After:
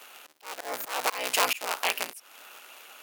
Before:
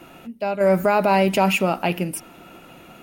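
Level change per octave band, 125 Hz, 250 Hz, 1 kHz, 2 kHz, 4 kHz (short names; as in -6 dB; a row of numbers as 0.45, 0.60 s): under -35 dB, -26.0 dB, -10.0 dB, -5.0 dB, +0.5 dB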